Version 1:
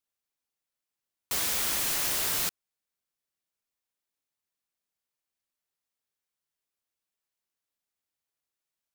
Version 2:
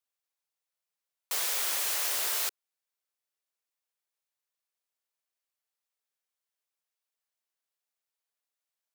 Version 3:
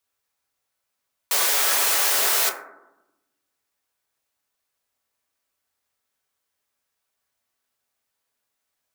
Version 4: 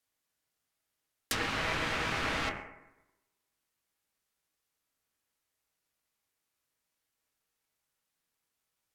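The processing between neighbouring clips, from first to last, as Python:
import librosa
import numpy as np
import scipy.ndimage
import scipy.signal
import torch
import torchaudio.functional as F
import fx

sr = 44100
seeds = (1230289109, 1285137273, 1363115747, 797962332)

y1 = scipy.signal.sosfilt(scipy.signal.butter(4, 420.0, 'highpass', fs=sr, output='sos'), x)
y1 = y1 * 10.0 ** (-1.5 / 20.0)
y2 = fx.rev_fdn(y1, sr, rt60_s=0.91, lf_ratio=1.6, hf_ratio=0.3, size_ms=71.0, drr_db=0.0)
y2 = y2 * 10.0 ** (9.0 / 20.0)
y3 = fx.env_lowpass_down(y2, sr, base_hz=2200.0, full_db=-18.5)
y3 = y3 * np.sin(2.0 * np.pi * 680.0 * np.arange(len(y3)) / sr)
y3 = y3 * 10.0 ** (-1.0 / 20.0)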